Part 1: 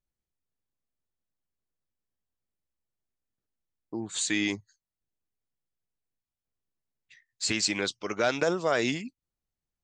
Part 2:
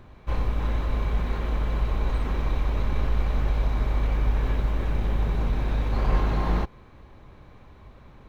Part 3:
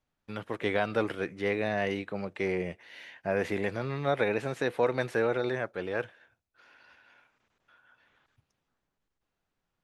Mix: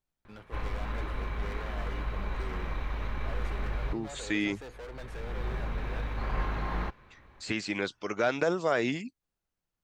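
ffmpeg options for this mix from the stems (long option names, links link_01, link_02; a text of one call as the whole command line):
ffmpeg -i stem1.wav -i stem2.wav -i stem3.wav -filter_complex "[0:a]acrossover=split=2900[link_01][link_02];[link_02]acompressor=threshold=-43dB:ratio=4:attack=1:release=60[link_03];[link_01][link_03]amix=inputs=2:normalize=0,volume=-1dB,asplit=2[link_04][link_05];[1:a]equalizer=frequency=1700:width=0.74:gain=8.5,adelay=250,volume=-9.5dB[link_06];[2:a]volume=32dB,asoftclip=hard,volume=-32dB,volume=-9.5dB[link_07];[link_05]apad=whole_len=376227[link_08];[link_06][link_08]sidechaincompress=threshold=-49dB:ratio=8:attack=7.6:release=559[link_09];[link_04][link_09][link_07]amix=inputs=3:normalize=0" out.wav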